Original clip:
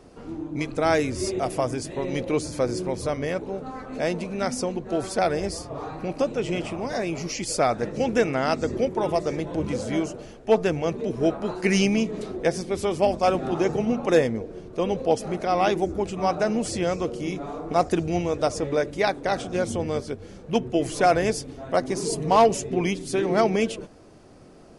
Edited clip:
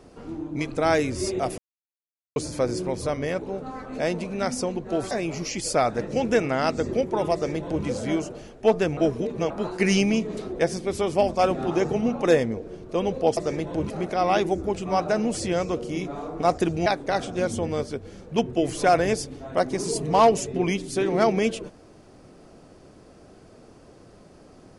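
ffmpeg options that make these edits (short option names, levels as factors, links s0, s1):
-filter_complex "[0:a]asplit=9[s0][s1][s2][s3][s4][s5][s6][s7][s8];[s0]atrim=end=1.58,asetpts=PTS-STARTPTS,afade=t=out:st=1.576:d=0.004:c=hsin[s9];[s1]atrim=start=1.58:end=2.36,asetpts=PTS-STARTPTS,volume=0[s10];[s2]atrim=start=2.36:end=5.112,asetpts=PTS-STARTPTS,afade=t=in:d=0.004:c=hsin[s11];[s3]atrim=start=6.948:end=10.812[s12];[s4]atrim=start=10.808:end=11.342,asetpts=PTS-STARTPTS,areverse[s13];[s5]atrim=start=11.338:end=15.212[s14];[s6]atrim=start=9.168:end=9.702[s15];[s7]atrim=start=15.208:end=18.172[s16];[s8]atrim=start=19.028[s17];[s9][s10][s11]concat=n=3:v=0:a=1[s18];[s18][s12]acrossfade=d=0.004:c1=hsin:c2=hsin[s19];[s19][s13]acrossfade=d=0.004:c1=hsin:c2=hsin[s20];[s20][s14]acrossfade=d=0.004:c1=hsin:c2=hsin[s21];[s21][s15]acrossfade=d=0.004:c1=hsin:c2=hsin[s22];[s22][s16]acrossfade=d=0.004:c1=hsin:c2=hsin[s23];[s23][s17]acrossfade=d=0.004:c1=hsin:c2=hsin"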